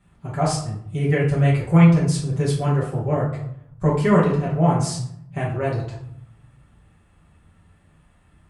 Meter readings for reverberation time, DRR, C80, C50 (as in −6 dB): 0.70 s, −8.0 dB, 9.0 dB, 4.5 dB